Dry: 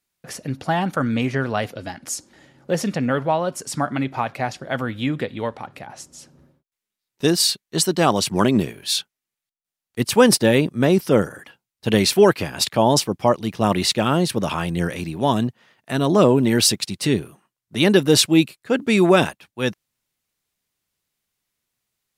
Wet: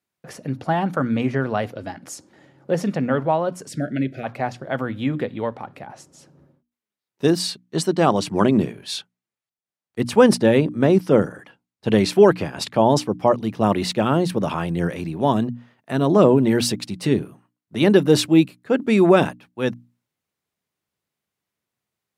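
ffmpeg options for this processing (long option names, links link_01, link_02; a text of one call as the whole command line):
ffmpeg -i in.wav -filter_complex "[0:a]asplit=3[link_01][link_02][link_03];[link_01]afade=type=out:start_time=3.68:duration=0.02[link_04];[link_02]asuperstop=centerf=980:order=8:qfactor=1.1,afade=type=in:start_time=3.68:duration=0.02,afade=type=out:start_time=4.23:duration=0.02[link_05];[link_03]afade=type=in:start_time=4.23:duration=0.02[link_06];[link_04][link_05][link_06]amix=inputs=3:normalize=0,asettb=1/sr,asplit=3[link_07][link_08][link_09];[link_07]atrim=end=7.394[link_10];[link_08]atrim=start=7.39:end=13.2,asetpts=PTS-STARTPTS,afade=type=in:duration=0.004:curve=qsin,afade=type=out:start_time=5.806:duration=0.004:curve=qsin,lowpass=11000[link_11];[link_09]atrim=start=13.196[link_12];[link_10][link_11]acrossfade=duration=0.004:curve1=hsin:curve2=qsin[link_13];[link_13][link_12]acrossfade=duration=0.004:curve1=qsin:curve2=hsin,highpass=92,highshelf=frequency=2100:gain=-10.5,bandreject=frequency=60:width_type=h:width=6,bandreject=frequency=120:width_type=h:width=6,bandreject=frequency=180:width_type=h:width=6,bandreject=frequency=240:width_type=h:width=6,bandreject=frequency=300:width_type=h:width=6,volume=1.5dB" out.wav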